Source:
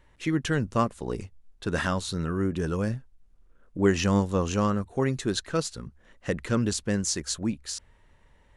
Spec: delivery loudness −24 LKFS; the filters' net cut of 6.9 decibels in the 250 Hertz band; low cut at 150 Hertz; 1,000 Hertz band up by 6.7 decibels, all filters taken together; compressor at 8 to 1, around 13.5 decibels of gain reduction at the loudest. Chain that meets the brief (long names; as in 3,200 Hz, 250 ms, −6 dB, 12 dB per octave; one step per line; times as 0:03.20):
high-pass filter 150 Hz
parametric band 250 Hz −9 dB
parametric band 1,000 Hz +8.5 dB
downward compressor 8 to 1, threshold −29 dBFS
level +11 dB